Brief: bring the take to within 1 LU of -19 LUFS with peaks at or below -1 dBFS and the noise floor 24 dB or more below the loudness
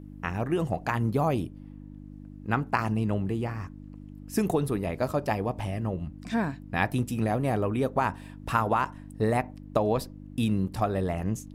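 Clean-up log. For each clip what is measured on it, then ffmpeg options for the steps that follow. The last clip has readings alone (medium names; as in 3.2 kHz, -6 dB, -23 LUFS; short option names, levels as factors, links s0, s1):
hum 50 Hz; highest harmonic 300 Hz; hum level -41 dBFS; loudness -29.0 LUFS; peak level -8.5 dBFS; loudness target -19.0 LUFS
-> -af "bandreject=f=50:t=h:w=4,bandreject=f=100:t=h:w=4,bandreject=f=150:t=h:w=4,bandreject=f=200:t=h:w=4,bandreject=f=250:t=h:w=4,bandreject=f=300:t=h:w=4"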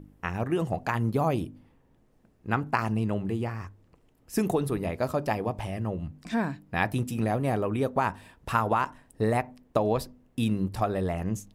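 hum not found; loudness -29.0 LUFS; peak level -8.5 dBFS; loudness target -19.0 LUFS
-> -af "volume=3.16,alimiter=limit=0.891:level=0:latency=1"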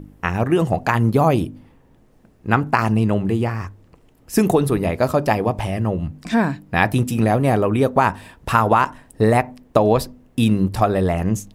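loudness -19.0 LUFS; peak level -1.0 dBFS; noise floor -54 dBFS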